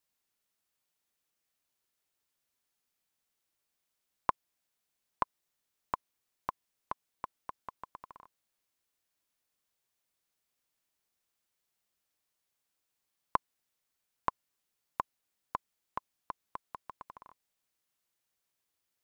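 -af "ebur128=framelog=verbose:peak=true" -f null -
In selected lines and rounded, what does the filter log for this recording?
Integrated loudness:
  I:         -41.7 LUFS
  Threshold: -52.3 LUFS
Loudness range:
  LRA:         8.8 LU
  Threshold: -65.0 LUFS
  LRA low:   -51.0 LUFS
  LRA high:  -42.2 LUFS
True peak:
  Peak:      -10.1 dBFS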